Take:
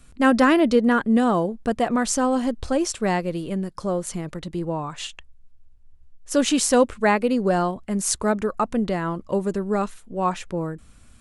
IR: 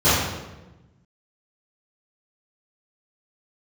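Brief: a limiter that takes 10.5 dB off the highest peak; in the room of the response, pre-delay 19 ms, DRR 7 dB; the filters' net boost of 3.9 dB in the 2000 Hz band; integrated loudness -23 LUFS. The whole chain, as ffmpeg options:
-filter_complex "[0:a]equalizer=f=2k:t=o:g=5,alimiter=limit=-13.5dB:level=0:latency=1,asplit=2[a][b];[1:a]atrim=start_sample=2205,adelay=19[c];[b][c]afir=irnorm=-1:irlink=0,volume=-29.5dB[d];[a][d]amix=inputs=2:normalize=0"

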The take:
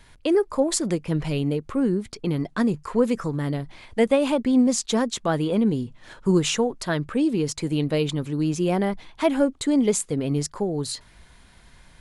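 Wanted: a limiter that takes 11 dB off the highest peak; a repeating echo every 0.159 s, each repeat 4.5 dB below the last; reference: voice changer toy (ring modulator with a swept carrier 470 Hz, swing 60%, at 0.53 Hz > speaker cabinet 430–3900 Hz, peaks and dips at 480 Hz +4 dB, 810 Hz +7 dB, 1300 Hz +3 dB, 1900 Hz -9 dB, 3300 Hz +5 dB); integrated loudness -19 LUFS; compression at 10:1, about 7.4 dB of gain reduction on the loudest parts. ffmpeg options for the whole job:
-af "acompressor=threshold=-22dB:ratio=10,alimiter=limit=-22dB:level=0:latency=1,aecho=1:1:159|318|477|636|795|954|1113|1272|1431:0.596|0.357|0.214|0.129|0.0772|0.0463|0.0278|0.0167|0.01,aeval=exprs='val(0)*sin(2*PI*470*n/s+470*0.6/0.53*sin(2*PI*0.53*n/s))':c=same,highpass=430,equalizer=f=480:t=q:w=4:g=4,equalizer=f=810:t=q:w=4:g=7,equalizer=f=1.3k:t=q:w=4:g=3,equalizer=f=1.9k:t=q:w=4:g=-9,equalizer=f=3.3k:t=q:w=4:g=5,lowpass=f=3.9k:w=0.5412,lowpass=f=3.9k:w=1.3066,volume=12.5dB"

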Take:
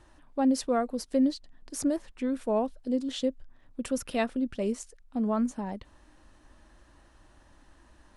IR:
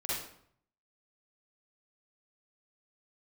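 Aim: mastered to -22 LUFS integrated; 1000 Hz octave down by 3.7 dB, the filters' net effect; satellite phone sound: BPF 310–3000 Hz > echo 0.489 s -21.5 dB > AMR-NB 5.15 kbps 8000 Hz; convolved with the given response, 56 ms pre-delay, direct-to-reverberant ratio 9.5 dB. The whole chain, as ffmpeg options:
-filter_complex "[0:a]equalizer=f=1k:t=o:g=-5.5,asplit=2[a][b];[1:a]atrim=start_sample=2205,adelay=56[c];[b][c]afir=irnorm=-1:irlink=0,volume=-14.5dB[d];[a][d]amix=inputs=2:normalize=0,highpass=310,lowpass=3k,aecho=1:1:489:0.0841,volume=12.5dB" -ar 8000 -c:a libopencore_amrnb -b:a 5150

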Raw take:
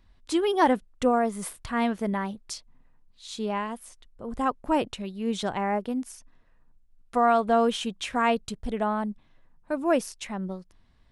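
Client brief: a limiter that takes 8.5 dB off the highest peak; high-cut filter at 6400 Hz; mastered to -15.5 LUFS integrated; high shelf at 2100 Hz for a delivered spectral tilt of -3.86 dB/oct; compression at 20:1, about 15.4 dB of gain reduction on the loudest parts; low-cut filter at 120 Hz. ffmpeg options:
-af "highpass=120,lowpass=6.4k,highshelf=f=2.1k:g=8,acompressor=threshold=-30dB:ratio=20,volume=23dB,alimiter=limit=-5.5dB:level=0:latency=1"

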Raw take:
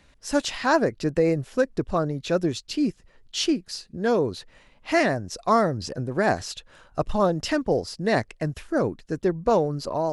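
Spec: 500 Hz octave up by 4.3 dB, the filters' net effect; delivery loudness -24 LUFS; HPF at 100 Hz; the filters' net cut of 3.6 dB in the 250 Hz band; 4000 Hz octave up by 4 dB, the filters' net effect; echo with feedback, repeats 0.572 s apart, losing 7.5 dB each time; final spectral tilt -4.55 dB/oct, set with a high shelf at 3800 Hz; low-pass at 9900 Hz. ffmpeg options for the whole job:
-af "highpass=100,lowpass=9.9k,equalizer=f=250:t=o:g=-8,equalizer=f=500:t=o:g=7,highshelf=f=3.8k:g=-3.5,equalizer=f=4k:t=o:g=7.5,aecho=1:1:572|1144|1716|2288|2860:0.422|0.177|0.0744|0.0312|0.0131,volume=-2dB"

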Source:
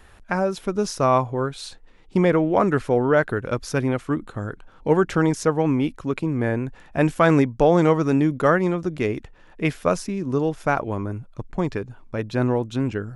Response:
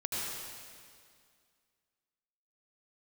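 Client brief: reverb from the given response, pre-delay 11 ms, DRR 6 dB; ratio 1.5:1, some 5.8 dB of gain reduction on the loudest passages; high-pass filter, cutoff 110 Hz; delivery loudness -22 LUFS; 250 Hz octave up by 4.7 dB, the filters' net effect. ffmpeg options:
-filter_complex "[0:a]highpass=110,equalizer=f=250:t=o:g=6.5,acompressor=threshold=-26dB:ratio=1.5,asplit=2[a][b];[1:a]atrim=start_sample=2205,adelay=11[c];[b][c]afir=irnorm=-1:irlink=0,volume=-11dB[d];[a][d]amix=inputs=2:normalize=0,volume=1.5dB"

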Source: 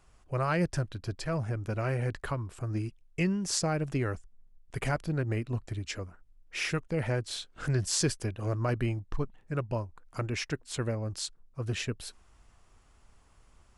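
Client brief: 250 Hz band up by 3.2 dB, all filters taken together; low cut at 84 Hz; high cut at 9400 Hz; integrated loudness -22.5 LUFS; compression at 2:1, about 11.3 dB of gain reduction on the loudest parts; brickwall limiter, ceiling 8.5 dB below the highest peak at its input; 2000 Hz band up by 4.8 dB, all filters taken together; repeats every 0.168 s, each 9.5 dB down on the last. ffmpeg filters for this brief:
-af "highpass=84,lowpass=9.4k,equalizer=f=250:t=o:g=5,equalizer=f=2k:t=o:g=6,acompressor=threshold=-42dB:ratio=2,alimiter=level_in=5.5dB:limit=-24dB:level=0:latency=1,volume=-5.5dB,aecho=1:1:168|336|504|672:0.335|0.111|0.0365|0.012,volume=18.5dB"

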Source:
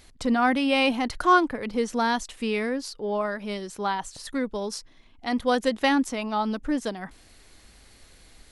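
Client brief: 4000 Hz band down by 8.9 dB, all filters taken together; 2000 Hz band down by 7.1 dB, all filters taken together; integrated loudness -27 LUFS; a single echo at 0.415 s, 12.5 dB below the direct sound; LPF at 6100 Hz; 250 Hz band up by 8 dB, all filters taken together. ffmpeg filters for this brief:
-af "lowpass=6.1k,equalizer=f=250:t=o:g=9,equalizer=f=2k:t=o:g=-8.5,equalizer=f=4k:t=o:g=-8,aecho=1:1:415:0.237,volume=-5.5dB"

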